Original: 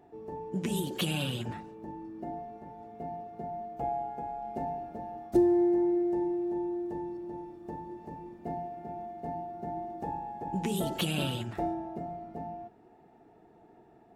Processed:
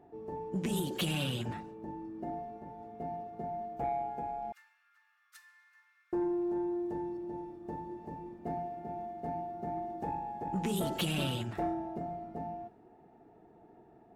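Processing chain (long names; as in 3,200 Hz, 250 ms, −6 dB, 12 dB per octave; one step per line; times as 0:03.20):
0:04.52–0:06.13: Butterworth high-pass 1,200 Hz 72 dB per octave
soft clipping −24.5 dBFS, distortion −19 dB
one half of a high-frequency compander decoder only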